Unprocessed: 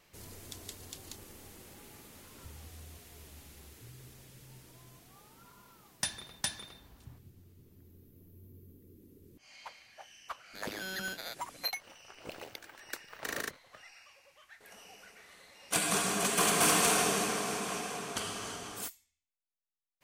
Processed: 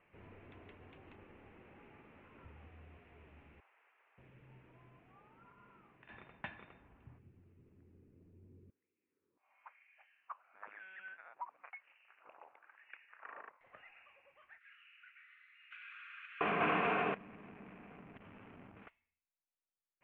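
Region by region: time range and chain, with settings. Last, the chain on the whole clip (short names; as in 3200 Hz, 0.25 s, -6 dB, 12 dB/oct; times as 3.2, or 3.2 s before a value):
3.6–4.18 HPF 720 Hz 24 dB/oct + air absorption 310 m
5.53–6.09 bell 860 Hz -4 dB 0.68 oct + compressor 10:1, threshold -51 dBFS + doubler 45 ms -3 dB
8.7–13.61 rippled Chebyshev low-pass 3600 Hz, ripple 3 dB + LFO band-pass sine 1 Hz 930–2300 Hz
14.58–16.41 steep high-pass 1300 Hz 72 dB/oct + bell 5400 Hz +6 dB 1.2 oct + compressor 10:1, threshold -37 dBFS
17.14–18.87 band shelf 740 Hz -10.5 dB 2.3 oct + compressor 10:1, threshold -41 dBFS + backlash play -36.5 dBFS
whole clip: elliptic low-pass 2600 Hz, stop band 50 dB; low shelf 79 Hz -7 dB; gain -3 dB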